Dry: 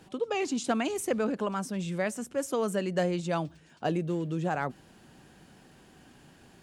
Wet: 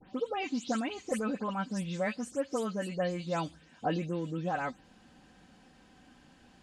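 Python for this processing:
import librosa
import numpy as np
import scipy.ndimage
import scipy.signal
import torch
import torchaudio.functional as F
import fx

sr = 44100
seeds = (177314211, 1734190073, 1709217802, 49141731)

y = fx.spec_delay(x, sr, highs='late', ms=140)
y = scipy.signal.sosfilt(scipy.signal.butter(2, 7100.0, 'lowpass', fs=sr, output='sos'), y)
y = fx.peak_eq(y, sr, hz=380.0, db=-3.0, octaves=1.1)
y = y + 0.44 * np.pad(y, (int(3.9 * sr / 1000.0), 0))[:len(y)]
y = fx.rider(y, sr, range_db=4, speed_s=0.5)
y = F.gain(torch.from_numpy(y), -2.5).numpy()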